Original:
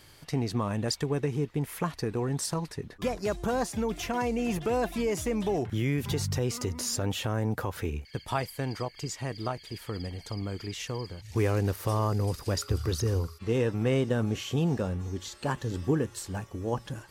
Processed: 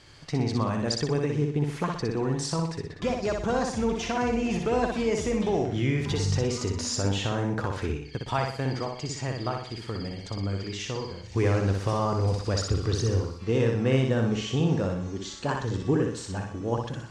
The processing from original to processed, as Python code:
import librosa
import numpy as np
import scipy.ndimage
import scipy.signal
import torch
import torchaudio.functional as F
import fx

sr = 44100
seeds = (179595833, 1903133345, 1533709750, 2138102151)

y = scipy.signal.sosfilt(scipy.signal.butter(4, 7300.0, 'lowpass', fs=sr, output='sos'), x)
y = fx.echo_feedback(y, sr, ms=61, feedback_pct=43, wet_db=-4)
y = F.gain(torch.from_numpy(y), 1.5).numpy()